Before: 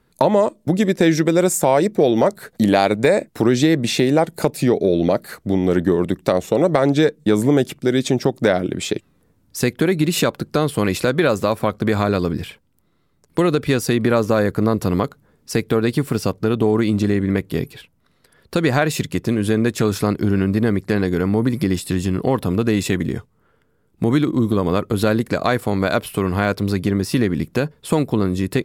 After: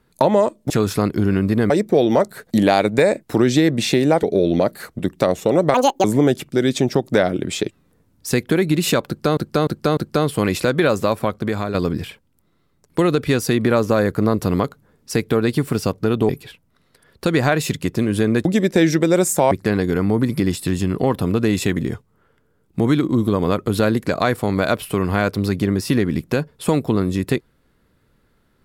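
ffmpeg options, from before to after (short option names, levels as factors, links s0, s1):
-filter_complex "[0:a]asplit=14[s0][s1][s2][s3][s4][s5][s6][s7][s8][s9][s10][s11][s12][s13];[s0]atrim=end=0.702[s14];[s1]atrim=start=19.748:end=20.752[s15];[s2]atrim=start=1.758:end=4.292[s16];[s3]atrim=start=4.718:end=5.482[s17];[s4]atrim=start=6.048:end=6.804[s18];[s5]atrim=start=6.8:end=7.34,asetpts=PTS-STARTPTS,asetrate=78939,aresample=44100[s19];[s6]atrim=start=7.336:end=10.672[s20];[s7]atrim=start=10.368:end=10.672[s21];[s8]atrim=start=10.368:end=10.672[s22];[s9]atrim=start=10.368:end=12.14,asetpts=PTS-STARTPTS,afade=t=out:st=1.142:d=0.63:silence=0.421697[s23];[s10]atrim=start=12.14:end=16.692,asetpts=PTS-STARTPTS,afade=t=in:d=0.004:c=hsin:silence=0.421697[s24];[s11]atrim=start=17.588:end=19.752[s25];[s12]atrim=start=0.698:end=1.762[s26];[s13]atrim=start=20.748[s27];[s14][s15]acrossfade=d=0.004:c1=hsin:c2=hsin[s28];[s28][s16]acrossfade=d=0.004:c1=hsin:c2=hsin[s29];[s29][s17]acrossfade=d=0.004:c1=hsin:c2=hsin[s30];[s30][s18]acrossfade=d=0.004:c1=hsin:c2=hsin[s31];[s31][s19]acrossfade=d=0.004:c1=hsin:c2=hsin[s32];[s32][s20]acrossfade=d=0.004:c1=hsin:c2=hsin[s33];[s33][s21]acrossfade=d=0.004:c1=hsin:c2=hsin[s34];[s34][s22]acrossfade=d=0.004:c1=hsin:c2=hsin[s35];[s23][s24]concat=n=2:v=0:a=1[s36];[s35][s36]acrossfade=d=0.004:c1=hsin:c2=hsin[s37];[s37][s25]acrossfade=d=0.004:c1=hsin:c2=hsin[s38];[s38][s26]acrossfade=d=0.004:c1=hsin:c2=hsin[s39];[s39][s27]acrossfade=d=0.004:c1=hsin:c2=hsin"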